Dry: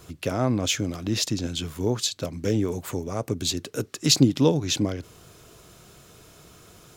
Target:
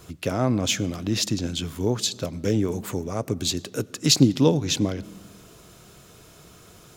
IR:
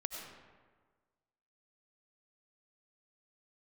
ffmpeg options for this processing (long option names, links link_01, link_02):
-filter_complex "[0:a]asplit=2[link_01][link_02];[link_02]equalizer=frequency=190:width_type=o:width=0.77:gain=12[link_03];[1:a]atrim=start_sample=2205[link_04];[link_03][link_04]afir=irnorm=-1:irlink=0,volume=-18.5dB[link_05];[link_01][link_05]amix=inputs=2:normalize=0"